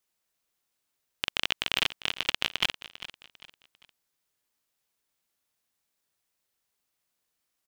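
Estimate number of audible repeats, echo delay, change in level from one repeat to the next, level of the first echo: 3, 398 ms, -9.5 dB, -15.0 dB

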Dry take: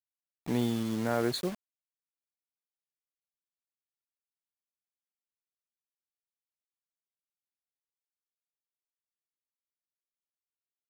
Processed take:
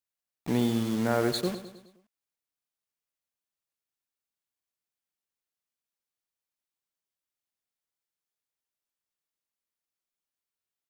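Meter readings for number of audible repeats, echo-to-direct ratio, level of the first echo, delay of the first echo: 4, -10.5 dB, -12.0 dB, 104 ms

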